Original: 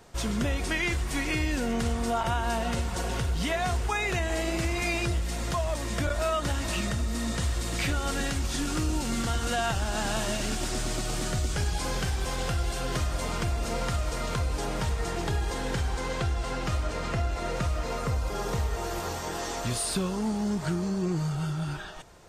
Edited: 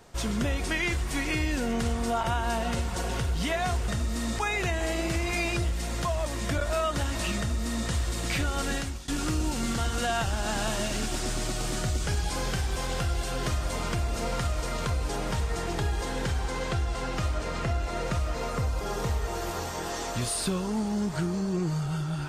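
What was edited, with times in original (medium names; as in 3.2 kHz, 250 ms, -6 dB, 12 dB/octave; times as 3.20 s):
6.87–7.38 s: copy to 3.88 s
8.23–8.57 s: fade out, to -20 dB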